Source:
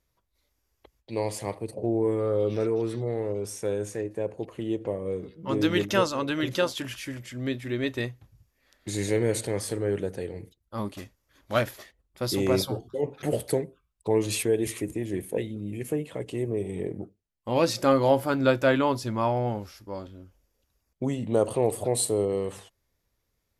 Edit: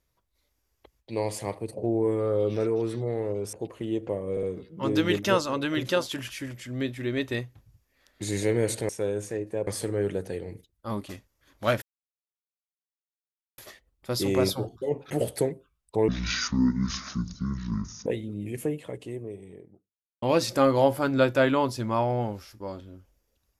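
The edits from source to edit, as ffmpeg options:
-filter_complex "[0:a]asplit=10[a][b][c][d][e][f][g][h][i][j];[a]atrim=end=3.532[k];[b]atrim=start=4.308:end=5.152[l];[c]atrim=start=5.088:end=5.152[m];[d]atrim=start=5.088:end=9.552[n];[e]atrim=start=3.528:end=4.312[o];[f]atrim=start=9.548:end=11.7,asetpts=PTS-STARTPTS,afade=t=out:st=2.148:d=0.004:c=hsin,apad=pad_dur=1.76[p];[g]atrim=start=11.7:end=14.204,asetpts=PTS-STARTPTS,afade=t=in:d=0.004:c=hsin[q];[h]atrim=start=14.2:end=15.33,asetpts=PTS-STARTPTS,asetrate=25137,aresample=44100,atrim=end_sample=87426,asetpts=PTS-STARTPTS[r];[i]atrim=start=15.326:end=17.49,asetpts=PTS-STARTPTS,afade=t=out:st=0.594:d=1.57:c=qua[s];[j]atrim=start=17.49,asetpts=PTS-STARTPTS,afade=t=in:d=0.004:c=hsin[t];[k][l]acrossfade=d=0.004:c1=hsin:c2=hsin[u];[u][m]acrossfade=d=0.004:c1=hsin:c2=hsin[v];[v][n]acrossfade=d=0.004:c1=hsin:c2=hsin[w];[w][o]acrossfade=d=0.004:c1=hsin:c2=hsin[x];[p][q]concat=n=2:v=0:a=1[y];[x][y]acrossfade=d=0.004:c1=hsin:c2=hsin[z];[z][r]acrossfade=d=0.004:c1=hsin:c2=hsin[aa];[s][t]concat=n=2:v=0:a=1[ab];[aa][ab]acrossfade=d=0.004:c1=hsin:c2=hsin"

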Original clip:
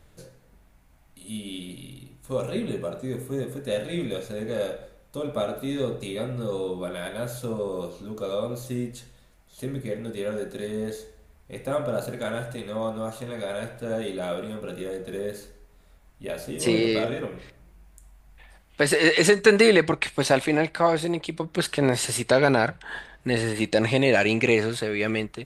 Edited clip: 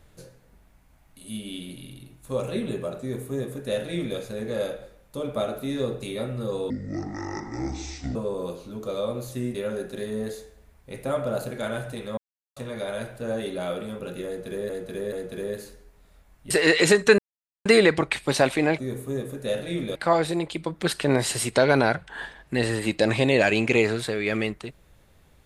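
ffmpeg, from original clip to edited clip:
-filter_complex "[0:a]asplit=12[a][b][c][d][e][f][g][h][i][j][k][l];[a]atrim=end=6.704[m];[b]atrim=start=6.7:end=7.5,asetpts=PTS-STARTPTS,asetrate=24255,aresample=44100,atrim=end_sample=64145,asetpts=PTS-STARTPTS[n];[c]atrim=start=7.496:end=8.892[o];[d]atrim=start=10.158:end=12.79,asetpts=PTS-STARTPTS,afade=t=out:st=2.628:d=0.004:c=hsin[p];[e]atrim=start=12.79:end=13.18,asetpts=PTS-STARTPTS,volume=0[q];[f]atrim=start=13.18:end=15.312,asetpts=PTS-STARTPTS,afade=t=in:d=0.004:c=hsin[r];[g]atrim=start=14.878:end=15.312[s];[h]atrim=start=14.878:end=16.262[t];[i]atrim=start=18.878:end=19.56,asetpts=PTS-STARTPTS,afade=t=out:st=0.678:d=0.004:c=hsin,apad=pad_dur=0.47[u];[j]atrim=start=19.56:end=20.692,asetpts=PTS-STARTPTS,afade=t=in:d=0.004:c=hsin[v];[k]atrim=start=3.008:end=4.182[w];[l]atrim=start=20.688[x];[m][n]acrossfade=d=0.004:c1=hsin:c2=hsin[y];[y][o]acrossfade=d=0.004:c1=hsin:c2=hsin[z];[p][q][r]concat=n=3:v=0:a=1[aa];[z][aa]acrossfade=d=0.004:c1=hsin:c2=hsin[ab];[ab][s]acrossfade=d=0.004:c1=hsin:c2=hsin[ac];[ac][t]acrossfade=d=0.004:c1=hsin:c2=hsin[ad];[u][v]concat=n=2:v=0:a=1[ae];[ad][ae]acrossfade=d=0.004:c1=hsin:c2=hsin[af];[af][w]acrossfade=d=0.004:c1=hsin:c2=hsin[ag];[ag][x]acrossfade=d=0.004:c1=hsin:c2=hsin"

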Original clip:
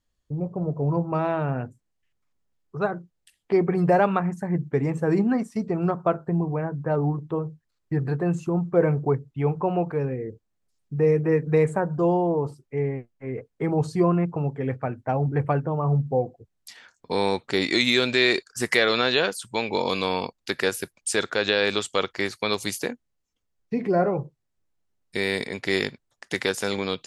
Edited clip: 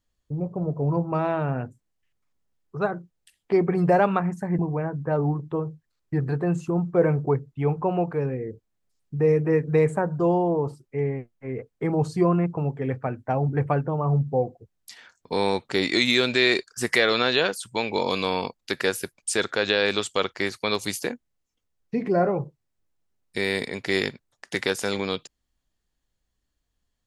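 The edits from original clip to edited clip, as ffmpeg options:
-filter_complex "[0:a]asplit=2[a][b];[a]atrim=end=4.592[c];[b]atrim=start=6.378[d];[c][d]acrossfade=d=0.004:c1=hsin:c2=hsin"

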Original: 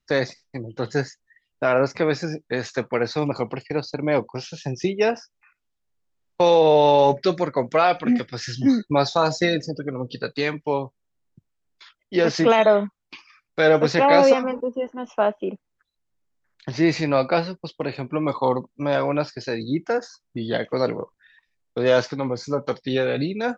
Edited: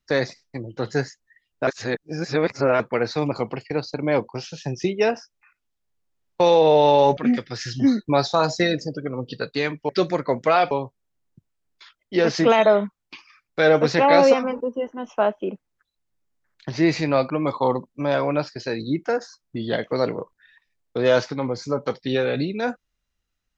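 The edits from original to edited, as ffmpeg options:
-filter_complex "[0:a]asplit=7[a][b][c][d][e][f][g];[a]atrim=end=1.672[h];[b]atrim=start=1.668:end=2.802,asetpts=PTS-STARTPTS,areverse[i];[c]atrim=start=2.798:end=7.172[j];[d]atrim=start=7.988:end=10.712[k];[e]atrim=start=7.168:end=7.992[l];[f]atrim=start=10.708:end=17.302[m];[g]atrim=start=18.108[n];[h][i]acrossfade=d=0.004:c1=hsin:c2=hsin[o];[o][j]acrossfade=d=0.004:c1=hsin:c2=hsin[p];[p][k]acrossfade=d=0.004:c1=hsin:c2=hsin[q];[q][l]acrossfade=d=0.004:c1=hsin:c2=hsin[r];[r][m]acrossfade=d=0.004:c1=hsin:c2=hsin[s];[s][n]acrossfade=d=0.004:c1=hsin:c2=hsin"

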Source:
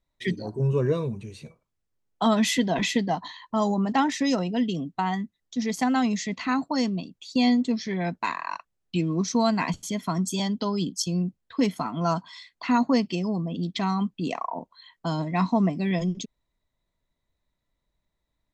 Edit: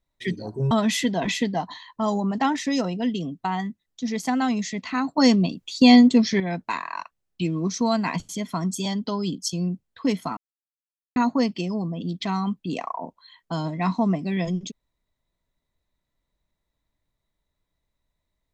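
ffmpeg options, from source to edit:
-filter_complex "[0:a]asplit=6[a][b][c][d][e][f];[a]atrim=end=0.712[g];[b]atrim=start=2.248:end=6.722[h];[c]atrim=start=6.718:end=7.942,asetpts=PTS-STARTPTS,volume=8.5dB[i];[d]atrim=start=7.938:end=11.91,asetpts=PTS-STARTPTS,afade=t=out:st=3.968:d=0.004:c=hsin[j];[e]atrim=start=11.91:end=12.7,asetpts=PTS-STARTPTS,volume=0[k];[f]atrim=start=12.7,asetpts=PTS-STARTPTS,afade=t=in:d=0.004:c=hsin[l];[g][h]acrossfade=d=0.004:c1=hsin:c2=hsin[m];[m][i]acrossfade=d=0.004:c1=hsin:c2=hsin[n];[j][k][l]concat=n=3:v=0:a=1[o];[n][o]acrossfade=d=0.004:c1=hsin:c2=hsin"

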